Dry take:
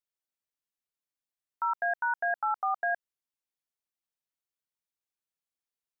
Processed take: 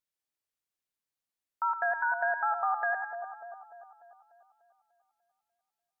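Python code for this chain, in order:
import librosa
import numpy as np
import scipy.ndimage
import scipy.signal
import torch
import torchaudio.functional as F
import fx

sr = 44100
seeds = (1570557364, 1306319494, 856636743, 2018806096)

y = fx.echo_split(x, sr, split_hz=1100.0, low_ms=296, high_ms=101, feedback_pct=52, wet_db=-7.5)
y = fx.vibrato(y, sr, rate_hz=11.0, depth_cents=21.0)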